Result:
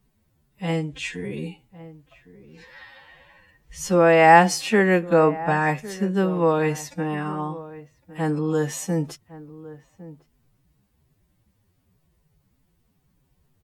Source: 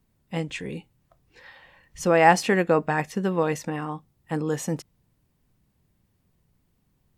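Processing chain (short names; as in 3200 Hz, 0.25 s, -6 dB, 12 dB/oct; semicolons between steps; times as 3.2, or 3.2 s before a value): time stretch by phase-locked vocoder 1.9×; outdoor echo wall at 190 m, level -17 dB; gain +3 dB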